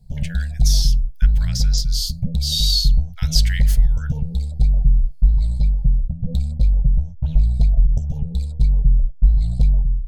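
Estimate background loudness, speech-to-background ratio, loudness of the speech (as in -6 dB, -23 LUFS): -20.5 LUFS, -3.0 dB, -23.5 LUFS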